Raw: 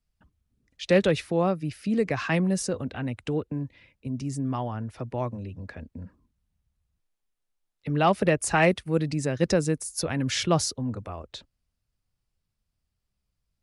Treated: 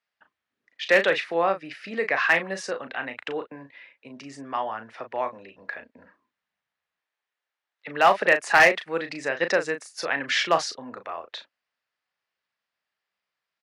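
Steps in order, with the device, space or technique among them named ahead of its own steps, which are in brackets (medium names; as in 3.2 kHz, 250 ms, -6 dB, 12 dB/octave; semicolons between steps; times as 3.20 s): megaphone (band-pass 690–3400 Hz; peaking EQ 1.8 kHz +6 dB 0.45 oct; hard clipper -16 dBFS, distortion -18 dB; doubling 36 ms -9 dB); trim +6.5 dB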